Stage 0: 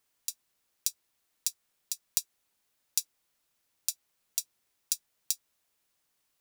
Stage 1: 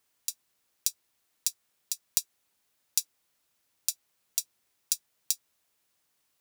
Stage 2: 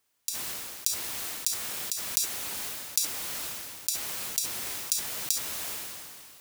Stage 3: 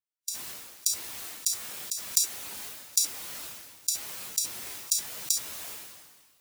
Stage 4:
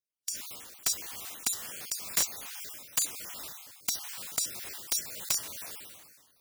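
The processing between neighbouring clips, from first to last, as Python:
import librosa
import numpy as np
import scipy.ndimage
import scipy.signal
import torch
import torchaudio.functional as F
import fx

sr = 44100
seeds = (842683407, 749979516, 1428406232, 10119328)

y1 = scipy.signal.sosfilt(scipy.signal.butter(2, 43.0, 'highpass', fs=sr, output='sos'), x)
y1 = y1 * librosa.db_to_amplitude(2.0)
y2 = fx.sustainer(y1, sr, db_per_s=26.0)
y3 = fx.spectral_expand(y2, sr, expansion=1.5)
y4 = fx.spec_dropout(y3, sr, seeds[0], share_pct=34)
y4 = (np.mod(10.0 ** (17.0 / 20.0) * y4 + 1.0, 2.0) - 1.0) / 10.0 ** (17.0 / 20.0)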